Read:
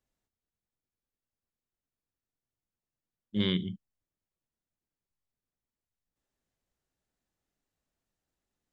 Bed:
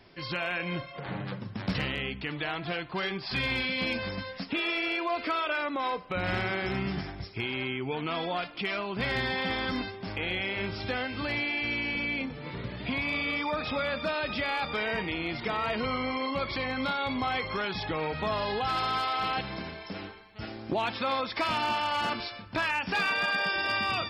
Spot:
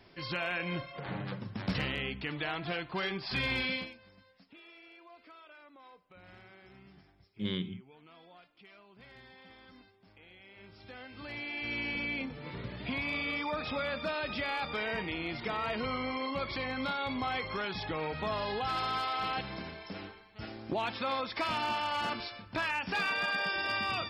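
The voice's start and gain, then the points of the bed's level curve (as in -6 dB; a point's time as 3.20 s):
4.05 s, -6.0 dB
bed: 3.75 s -2.5 dB
3.97 s -25 dB
10.37 s -25 dB
11.80 s -4 dB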